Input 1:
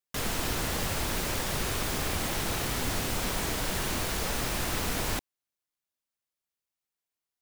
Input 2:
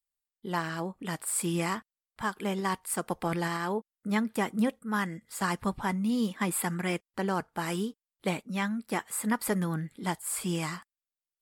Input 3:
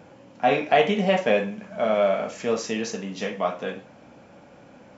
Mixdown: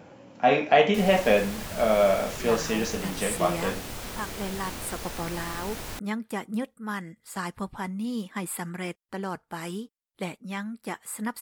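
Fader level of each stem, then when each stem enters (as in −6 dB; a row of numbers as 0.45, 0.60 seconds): −6.5, −3.0, 0.0 decibels; 0.80, 1.95, 0.00 seconds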